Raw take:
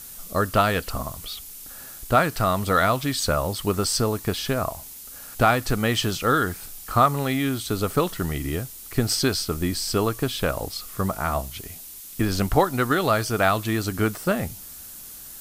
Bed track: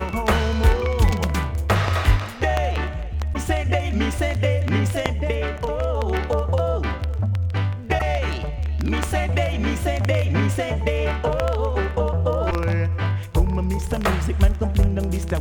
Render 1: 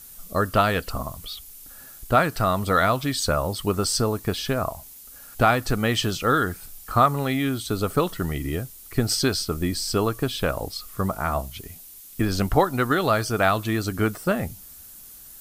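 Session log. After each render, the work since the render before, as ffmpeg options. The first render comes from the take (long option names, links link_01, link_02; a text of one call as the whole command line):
ffmpeg -i in.wav -af "afftdn=noise_reduction=6:noise_floor=-41" out.wav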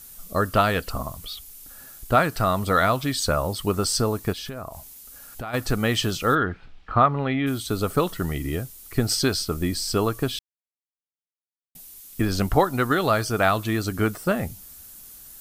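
ffmpeg -i in.wav -filter_complex "[0:a]asplit=3[link_01][link_02][link_03];[link_01]afade=type=out:start_time=4.32:duration=0.02[link_04];[link_02]acompressor=threshold=-31dB:ratio=5:attack=3.2:release=140:knee=1:detection=peak,afade=type=in:start_time=4.32:duration=0.02,afade=type=out:start_time=5.53:duration=0.02[link_05];[link_03]afade=type=in:start_time=5.53:duration=0.02[link_06];[link_04][link_05][link_06]amix=inputs=3:normalize=0,asplit=3[link_07][link_08][link_09];[link_07]afade=type=out:start_time=6.34:duration=0.02[link_10];[link_08]lowpass=frequency=3200:width=0.5412,lowpass=frequency=3200:width=1.3066,afade=type=in:start_time=6.34:duration=0.02,afade=type=out:start_time=7.46:duration=0.02[link_11];[link_09]afade=type=in:start_time=7.46:duration=0.02[link_12];[link_10][link_11][link_12]amix=inputs=3:normalize=0,asplit=3[link_13][link_14][link_15];[link_13]atrim=end=10.39,asetpts=PTS-STARTPTS,afade=type=out:start_time=10.386:duration=0.004:curve=hsin[link_16];[link_14]atrim=start=10.39:end=11.75,asetpts=PTS-STARTPTS,volume=0[link_17];[link_15]atrim=start=11.75,asetpts=PTS-STARTPTS,afade=type=in:duration=0.004:curve=hsin[link_18];[link_16][link_17][link_18]concat=n=3:v=0:a=1" out.wav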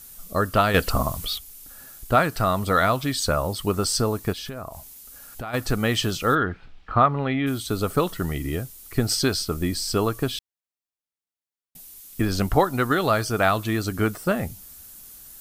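ffmpeg -i in.wav -filter_complex "[0:a]asettb=1/sr,asplit=3[link_01][link_02][link_03];[link_01]atrim=end=0.744[link_04];[link_02]atrim=start=0.74:end=1.38,asetpts=PTS-STARTPTS,afade=type=in:duration=0.004:curve=qsin,afade=type=out:start_time=0.636:duration=0.004:curve=qsin,acontrast=80[link_05];[link_03]atrim=start=1.376[link_06];[link_04][link_05]acrossfade=duration=0.004:curve1=hsin:curve2=qsin[link_07];[link_07][link_06]acrossfade=duration=0.004:curve1=qsin:curve2=hsin" out.wav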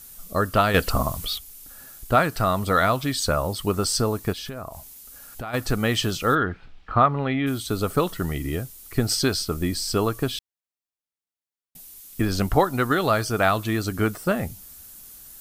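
ffmpeg -i in.wav -af anull out.wav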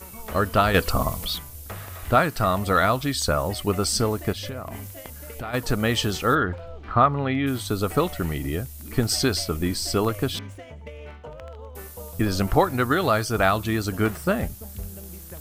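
ffmpeg -i in.wav -i bed.wav -filter_complex "[1:a]volume=-18dB[link_01];[0:a][link_01]amix=inputs=2:normalize=0" out.wav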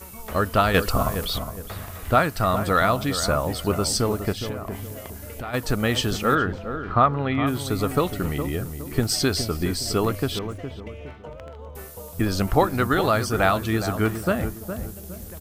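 ffmpeg -i in.wav -filter_complex "[0:a]asplit=2[link_01][link_02];[link_02]adelay=413,lowpass=frequency=1100:poles=1,volume=-8.5dB,asplit=2[link_03][link_04];[link_04]adelay=413,lowpass=frequency=1100:poles=1,volume=0.36,asplit=2[link_05][link_06];[link_06]adelay=413,lowpass=frequency=1100:poles=1,volume=0.36,asplit=2[link_07][link_08];[link_08]adelay=413,lowpass=frequency=1100:poles=1,volume=0.36[link_09];[link_01][link_03][link_05][link_07][link_09]amix=inputs=5:normalize=0" out.wav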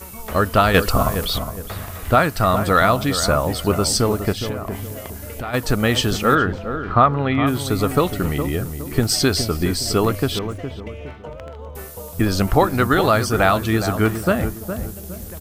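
ffmpeg -i in.wav -af "volume=4.5dB,alimiter=limit=-3dB:level=0:latency=1" out.wav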